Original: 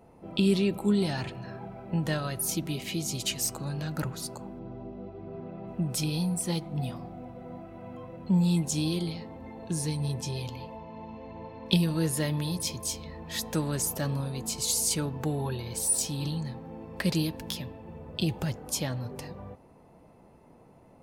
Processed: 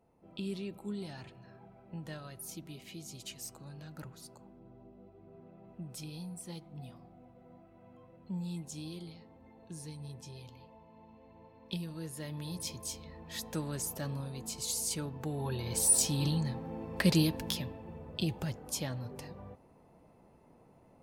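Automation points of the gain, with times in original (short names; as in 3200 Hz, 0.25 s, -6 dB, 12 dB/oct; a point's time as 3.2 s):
12.14 s -14.5 dB
12.61 s -7.5 dB
15.29 s -7.5 dB
15.73 s +1 dB
17.35 s +1 dB
18.37 s -5.5 dB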